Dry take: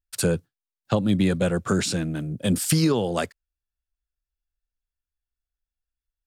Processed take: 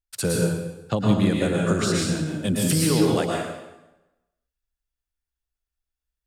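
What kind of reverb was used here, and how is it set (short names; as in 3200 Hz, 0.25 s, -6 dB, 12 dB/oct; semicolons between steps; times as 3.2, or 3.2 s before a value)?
plate-style reverb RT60 1 s, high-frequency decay 0.85×, pre-delay 0.1 s, DRR -2.5 dB; gain -2.5 dB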